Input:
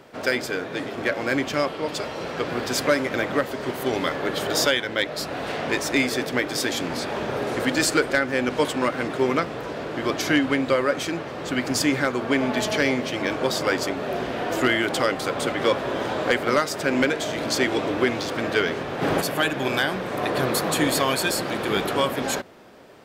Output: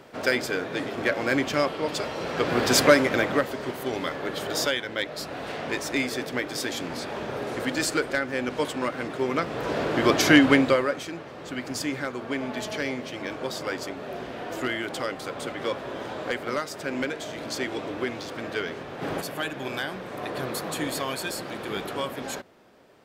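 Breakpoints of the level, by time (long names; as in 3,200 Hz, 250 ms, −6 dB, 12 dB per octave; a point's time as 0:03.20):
0:02.23 −0.5 dB
0:02.75 +5.5 dB
0:03.83 −5 dB
0:09.30 −5 dB
0:09.74 +4.5 dB
0:10.56 +4.5 dB
0:11.04 −8 dB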